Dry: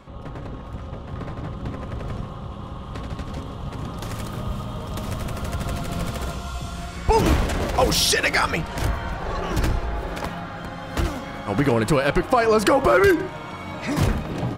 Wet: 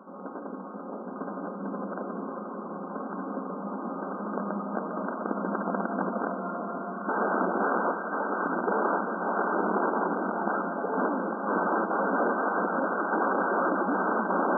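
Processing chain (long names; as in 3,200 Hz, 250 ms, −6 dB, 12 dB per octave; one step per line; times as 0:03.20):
delay that swaps between a low-pass and a high-pass 541 ms, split 960 Hz, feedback 82%, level −4 dB
wrap-around overflow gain 17.5 dB
brick-wall band-pass 180–1,600 Hz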